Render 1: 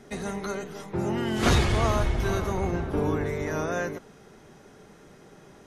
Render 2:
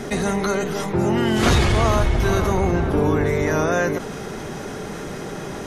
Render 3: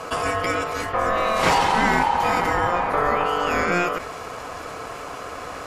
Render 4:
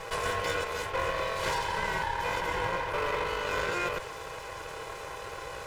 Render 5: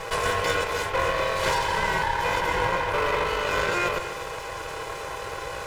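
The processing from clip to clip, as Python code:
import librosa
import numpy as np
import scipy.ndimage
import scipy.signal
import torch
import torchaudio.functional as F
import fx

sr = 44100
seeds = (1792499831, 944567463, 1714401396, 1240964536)

y1 = fx.env_flatten(x, sr, amount_pct=50)
y1 = y1 * librosa.db_to_amplitude(4.0)
y2 = fx.dynamic_eq(y1, sr, hz=1100.0, q=1.2, threshold_db=-34.0, ratio=4.0, max_db=4)
y2 = y2 * np.sin(2.0 * np.pi * 880.0 * np.arange(len(y2)) / sr)
y3 = fx.lower_of_two(y2, sr, delay_ms=2.0)
y3 = fx.rider(y3, sr, range_db=3, speed_s=0.5)
y3 = y3 + 10.0 ** (-41.0 / 20.0) * np.sin(2.0 * np.pi * 800.0 * np.arange(len(y3)) / sr)
y3 = y3 * librosa.db_to_amplitude(-8.0)
y4 = y3 + 10.0 ** (-12.5 / 20.0) * np.pad(y3, (int(249 * sr / 1000.0), 0))[:len(y3)]
y4 = y4 * librosa.db_to_amplitude(6.0)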